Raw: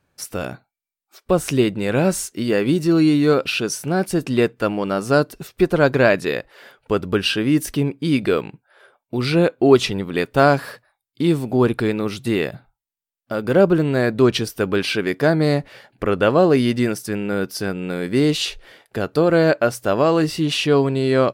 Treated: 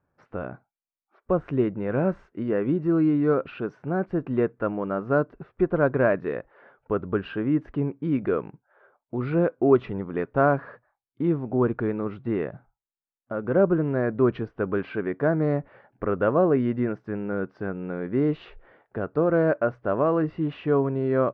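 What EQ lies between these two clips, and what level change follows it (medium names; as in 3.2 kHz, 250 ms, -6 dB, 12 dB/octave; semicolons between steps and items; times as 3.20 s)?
dynamic bell 820 Hz, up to -4 dB, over -37 dBFS, Q 5.2; four-pole ladder low-pass 1.8 kHz, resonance 20%; -1.0 dB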